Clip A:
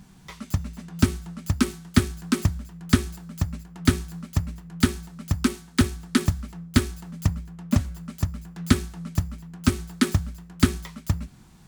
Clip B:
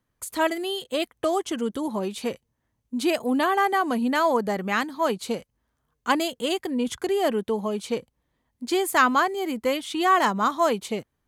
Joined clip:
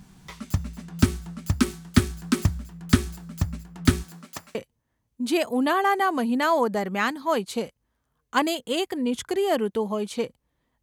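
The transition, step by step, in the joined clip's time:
clip A
0:04.02–0:04.55: high-pass filter 170 Hz → 850 Hz
0:04.55: continue with clip B from 0:02.28

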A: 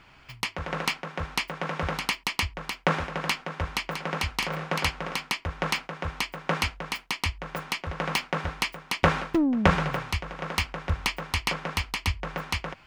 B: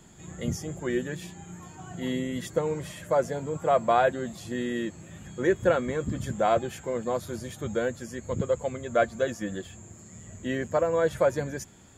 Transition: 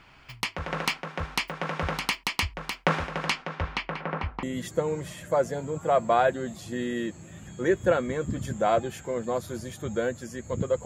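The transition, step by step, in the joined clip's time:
A
0:03.25–0:04.43: low-pass filter 9,900 Hz → 1,000 Hz
0:04.43: continue with B from 0:02.22

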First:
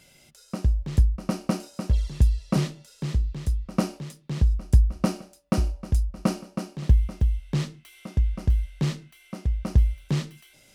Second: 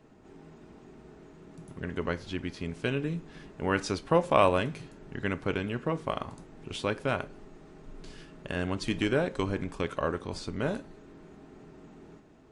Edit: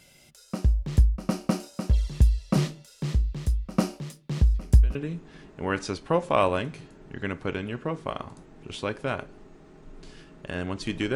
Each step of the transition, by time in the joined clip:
first
0:04.54: mix in second from 0:02.55 0.41 s −16.5 dB
0:04.95: continue with second from 0:02.96

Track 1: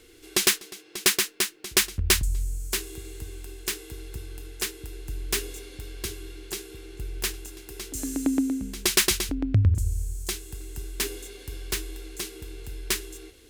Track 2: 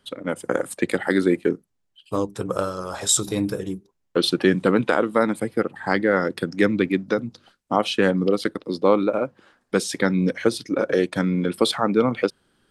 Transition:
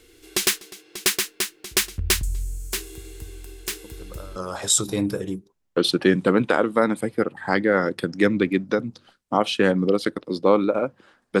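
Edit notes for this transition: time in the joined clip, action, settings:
track 1
0:03.84: mix in track 2 from 0:02.23 0.52 s −17.5 dB
0:04.36: continue with track 2 from 0:02.75

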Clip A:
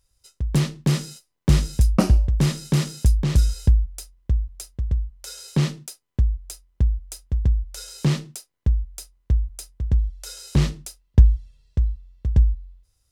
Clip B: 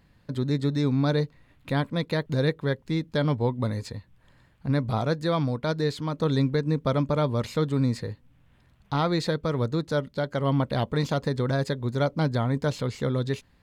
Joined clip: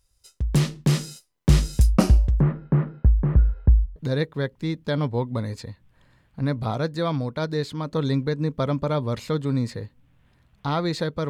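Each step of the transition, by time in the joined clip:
clip A
0:02.40–0:03.96: inverse Chebyshev low-pass filter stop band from 6,600 Hz, stop band 70 dB
0:03.96: continue with clip B from 0:02.23

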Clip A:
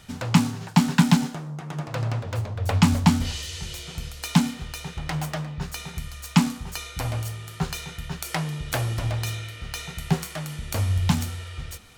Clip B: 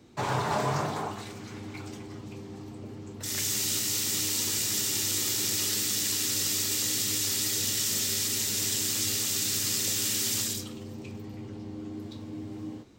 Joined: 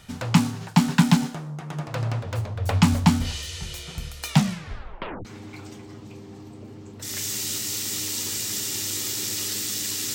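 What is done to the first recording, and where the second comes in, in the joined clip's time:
clip A
0:04.28: tape stop 0.97 s
0:05.25: continue with clip B from 0:01.46

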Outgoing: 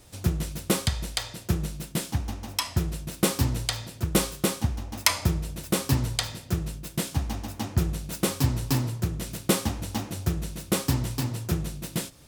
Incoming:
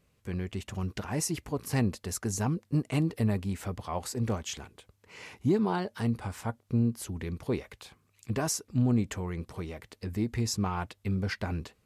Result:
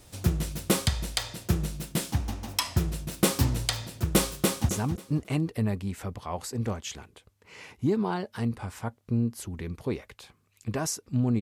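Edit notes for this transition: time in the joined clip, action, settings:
outgoing
0:04.35–0:04.69: delay throw 270 ms, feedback 25%, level −9.5 dB
0:04.69: continue with incoming from 0:02.31

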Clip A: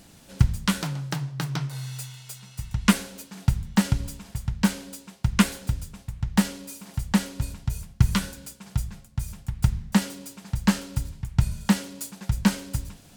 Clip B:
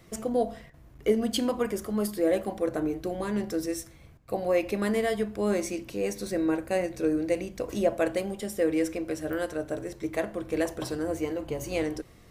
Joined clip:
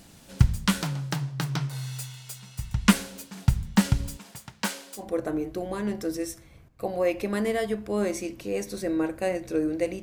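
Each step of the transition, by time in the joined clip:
clip A
0:04.16–0:05.09: high-pass filter 220 Hz → 710 Hz
0:05.01: continue with clip B from 0:02.50, crossfade 0.16 s

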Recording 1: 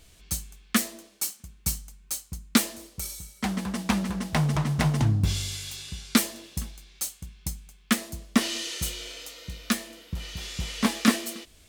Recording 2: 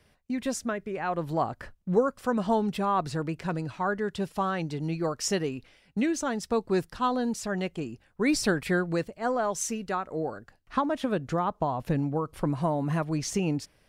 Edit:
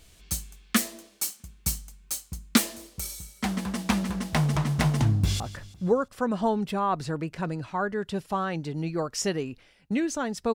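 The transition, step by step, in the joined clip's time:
recording 1
0:05.07–0:05.40: delay throw 170 ms, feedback 50%, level −16 dB
0:05.40: continue with recording 2 from 0:01.46

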